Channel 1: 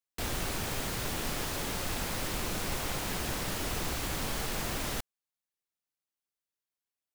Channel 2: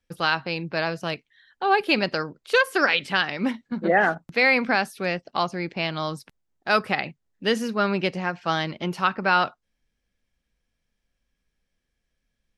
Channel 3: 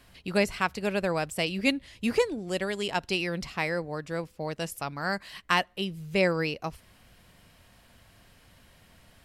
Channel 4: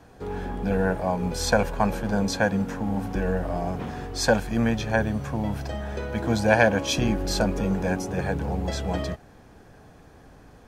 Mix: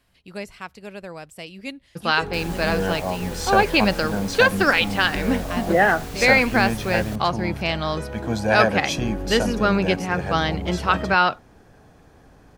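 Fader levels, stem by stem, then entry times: -4.0, +2.5, -8.5, -1.0 dB; 2.15, 1.85, 0.00, 2.00 s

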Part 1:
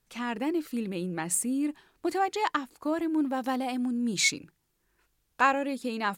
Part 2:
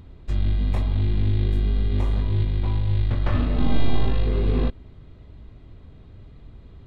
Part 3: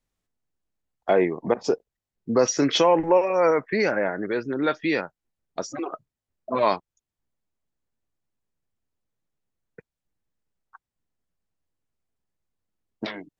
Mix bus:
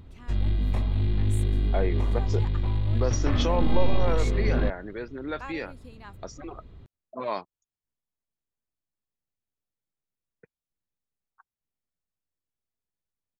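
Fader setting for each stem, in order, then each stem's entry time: -17.5, -3.0, -9.5 dB; 0.00, 0.00, 0.65 s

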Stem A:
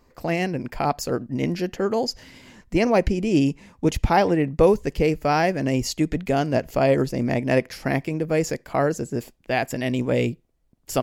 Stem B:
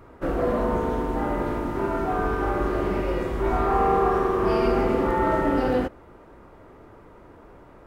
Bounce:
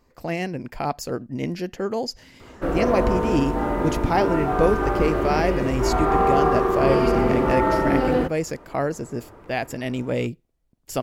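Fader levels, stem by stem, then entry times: -3.0, +2.0 dB; 0.00, 2.40 s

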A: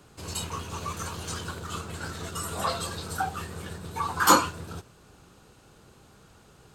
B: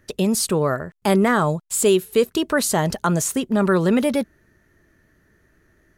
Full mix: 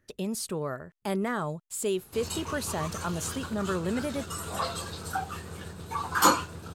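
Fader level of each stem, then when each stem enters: -2.5, -12.5 dB; 1.95, 0.00 s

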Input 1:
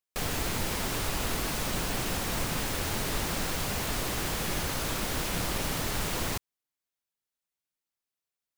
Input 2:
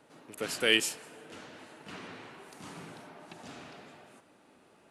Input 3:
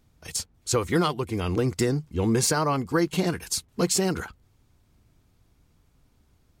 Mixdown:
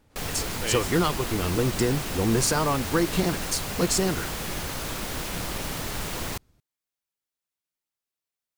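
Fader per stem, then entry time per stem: -0.5, -6.5, -0.5 dB; 0.00, 0.00, 0.00 s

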